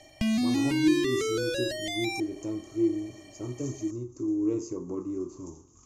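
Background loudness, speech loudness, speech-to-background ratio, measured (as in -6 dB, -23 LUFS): -28.5 LUFS, -32.0 LUFS, -3.5 dB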